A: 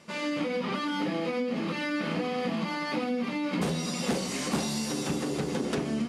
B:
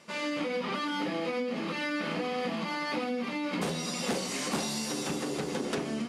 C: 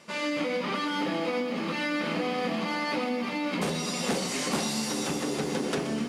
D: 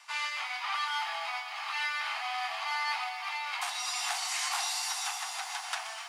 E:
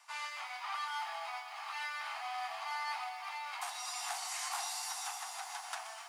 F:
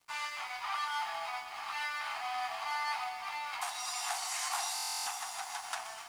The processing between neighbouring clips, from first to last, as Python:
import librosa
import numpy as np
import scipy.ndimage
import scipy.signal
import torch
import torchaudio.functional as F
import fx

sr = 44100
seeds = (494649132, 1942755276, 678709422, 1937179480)

y1 = fx.low_shelf(x, sr, hz=210.0, db=-9.0)
y2 = fx.echo_crushed(y1, sr, ms=124, feedback_pct=80, bits=10, wet_db=-13.5)
y2 = F.gain(torch.from_numpy(y2), 2.5).numpy()
y3 = scipy.signal.sosfilt(scipy.signal.butter(16, 710.0, 'highpass', fs=sr, output='sos'), y2)
y4 = fx.peak_eq(y3, sr, hz=3000.0, db=-8.0, octaves=2.4)
y4 = F.gain(torch.from_numpy(y4), -2.0).numpy()
y5 = np.sign(y4) * np.maximum(np.abs(y4) - 10.0 ** (-59.5 / 20.0), 0.0)
y5 = fx.buffer_glitch(y5, sr, at_s=(4.74,), block=1024, repeats=13)
y5 = F.gain(torch.from_numpy(y5), 4.0).numpy()